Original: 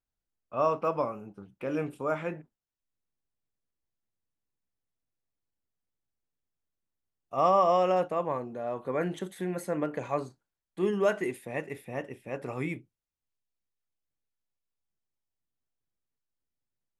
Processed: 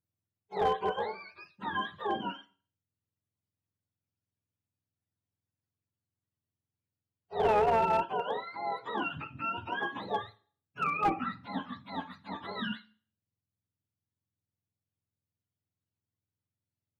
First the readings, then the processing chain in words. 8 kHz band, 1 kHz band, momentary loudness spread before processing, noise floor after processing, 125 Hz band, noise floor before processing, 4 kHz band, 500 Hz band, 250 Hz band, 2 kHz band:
under -10 dB, +0.5 dB, 14 LU, under -85 dBFS, -6.5 dB, under -85 dBFS, +6.5 dB, -5.0 dB, -5.5 dB, +3.0 dB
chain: spectrum mirrored in octaves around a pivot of 700 Hz; Schroeder reverb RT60 0.46 s, combs from 25 ms, DRR 18 dB; one-sided clip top -23.5 dBFS

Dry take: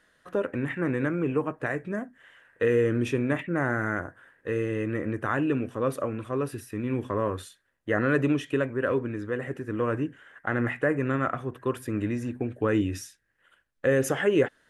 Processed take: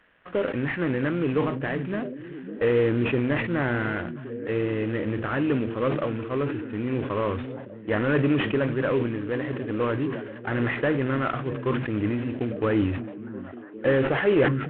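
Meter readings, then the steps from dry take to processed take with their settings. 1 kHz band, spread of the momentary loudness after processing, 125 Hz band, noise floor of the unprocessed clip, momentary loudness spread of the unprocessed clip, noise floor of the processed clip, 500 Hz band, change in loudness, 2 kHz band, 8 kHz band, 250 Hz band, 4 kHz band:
+1.5 dB, 11 LU, +3.0 dB, -69 dBFS, 9 LU, -40 dBFS, +2.0 dB, +2.0 dB, +1.5 dB, under -35 dB, +2.5 dB, +5.0 dB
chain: CVSD 16 kbps; delay with a stepping band-pass 0.559 s, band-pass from 170 Hz, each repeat 0.7 oct, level -8.5 dB; sustainer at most 56 dB/s; gain +2 dB

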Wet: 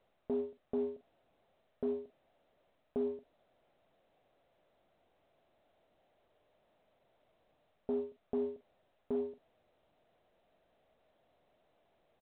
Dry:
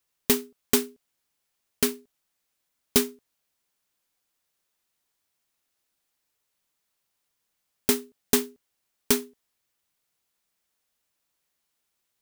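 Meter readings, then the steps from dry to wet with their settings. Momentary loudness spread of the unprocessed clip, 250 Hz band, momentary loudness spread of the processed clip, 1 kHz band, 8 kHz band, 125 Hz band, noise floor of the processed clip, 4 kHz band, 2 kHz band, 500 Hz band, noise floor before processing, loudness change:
9 LU, -10.5 dB, 12 LU, -14.0 dB, under -40 dB, -16.0 dB, -77 dBFS, under -35 dB, under -30 dB, -5.5 dB, -79 dBFS, -13.5 dB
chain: G.711 law mismatch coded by mu; reverse; compressor 5:1, threshold -33 dBFS, peak gain reduction 17 dB; reverse; ladder low-pass 720 Hz, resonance 65%; doubler 46 ms -13.5 dB; gain +9.5 dB; µ-law 64 kbps 8000 Hz

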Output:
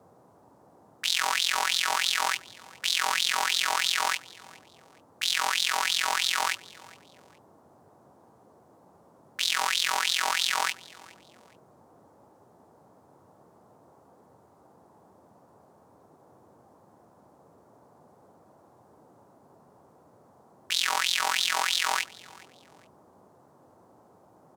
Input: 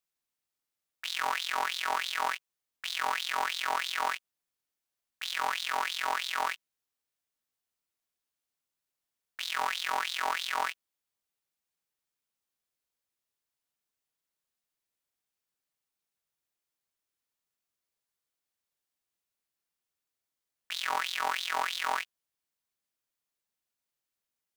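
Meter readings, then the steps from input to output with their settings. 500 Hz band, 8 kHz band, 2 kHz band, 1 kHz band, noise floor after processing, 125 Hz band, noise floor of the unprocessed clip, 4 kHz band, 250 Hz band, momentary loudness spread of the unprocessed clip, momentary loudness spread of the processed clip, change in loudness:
+1.5 dB, +12.5 dB, +5.0 dB, +2.0 dB, -59 dBFS, n/a, under -85 dBFS, +9.5 dB, +4.5 dB, 9 LU, 7 LU, +6.5 dB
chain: bell 7100 Hz +13 dB 2.8 oct; band noise 89–960 Hz -58 dBFS; feedback echo 0.416 s, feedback 31%, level -23 dB

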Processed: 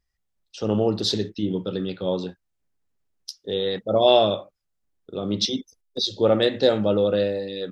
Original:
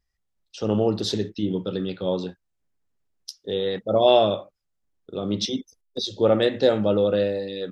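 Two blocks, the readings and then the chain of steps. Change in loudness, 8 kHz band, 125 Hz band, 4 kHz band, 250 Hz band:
+0.5 dB, n/a, 0.0 dB, +3.5 dB, 0.0 dB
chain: dynamic EQ 4400 Hz, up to +6 dB, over -41 dBFS, Q 2

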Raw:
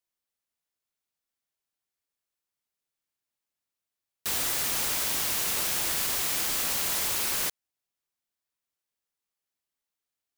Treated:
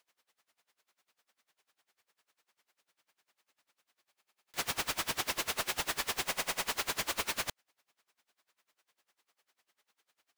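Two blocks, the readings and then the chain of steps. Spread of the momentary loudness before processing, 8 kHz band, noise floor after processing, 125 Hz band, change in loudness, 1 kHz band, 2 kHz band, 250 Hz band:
3 LU, -9.5 dB, under -85 dBFS, -5.5 dB, -8.5 dB, -1.0 dB, -2.0 dB, -4.5 dB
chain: overdrive pedal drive 33 dB, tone 2300 Hz, clips at -15 dBFS; stuck buffer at 4.12/6.25, samples 2048, times 8; dB-linear tremolo 10 Hz, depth 25 dB; gain -1.5 dB

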